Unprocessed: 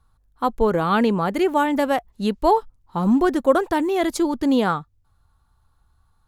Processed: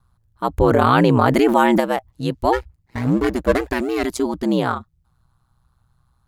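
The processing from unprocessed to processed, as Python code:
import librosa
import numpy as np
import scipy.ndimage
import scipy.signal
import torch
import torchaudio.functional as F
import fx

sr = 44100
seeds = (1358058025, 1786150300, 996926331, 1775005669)

y = fx.lower_of_two(x, sr, delay_ms=0.42, at=(2.52, 4.05), fade=0.02)
y = y * np.sin(2.0 * np.pi * 62.0 * np.arange(len(y)) / sr)
y = fx.env_flatten(y, sr, amount_pct=70, at=(0.57, 1.79), fade=0.02)
y = y * librosa.db_to_amplitude(2.5)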